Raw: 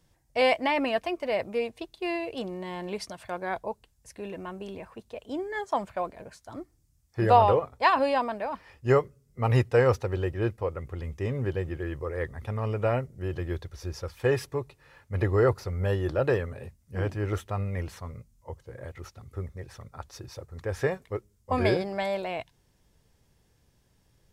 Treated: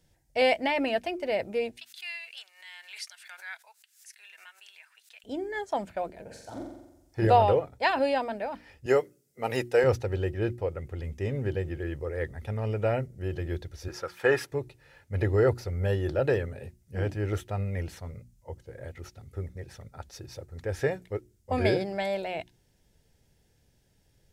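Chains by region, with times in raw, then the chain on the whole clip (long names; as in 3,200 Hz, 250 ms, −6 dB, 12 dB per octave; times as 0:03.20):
0:01.77–0:05.24: high-pass filter 1,400 Hz 24 dB per octave + background raised ahead of every attack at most 120 dB per second
0:06.24–0:07.27: parametric band 890 Hz +4.5 dB 0.28 octaves + flutter between parallel walls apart 7.6 metres, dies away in 0.89 s
0:08.86–0:09.84: high-pass filter 270 Hz + high-shelf EQ 6,500 Hz +7.5 dB
0:13.88–0:14.51: high-pass filter 200 Hz + parametric band 1,300 Hz +11.5 dB 1.2 octaves
whole clip: parametric band 1,100 Hz −14.5 dB 0.28 octaves; mains-hum notches 60/120/180/240/300/360 Hz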